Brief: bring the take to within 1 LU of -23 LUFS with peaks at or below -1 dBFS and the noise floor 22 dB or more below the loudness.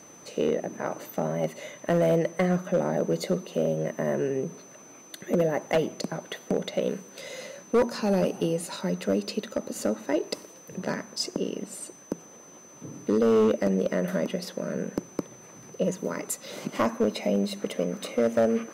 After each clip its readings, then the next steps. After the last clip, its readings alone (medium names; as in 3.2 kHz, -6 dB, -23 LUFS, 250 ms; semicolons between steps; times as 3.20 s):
clipped samples 1.0%; clipping level -16.5 dBFS; steady tone 6.1 kHz; tone level -50 dBFS; loudness -28.0 LUFS; peak level -16.5 dBFS; loudness target -23.0 LUFS
-> clip repair -16.5 dBFS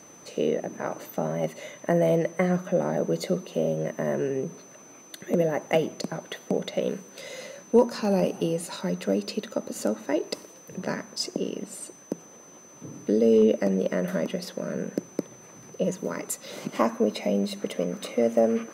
clipped samples 0.0%; steady tone 6.1 kHz; tone level -50 dBFS
-> band-stop 6.1 kHz, Q 30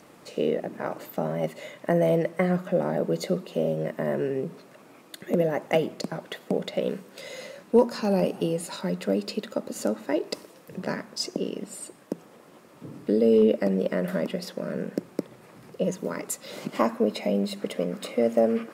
steady tone not found; loudness -27.5 LUFS; peak level -7.5 dBFS; loudness target -23.0 LUFS
-> trim +4.5 dB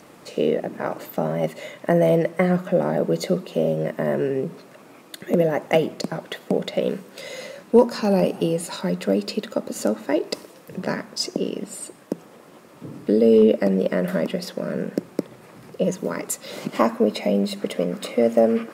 loudness -23.0 LUFS; peak level -3.0 dBFS; noise floor -48 dBFS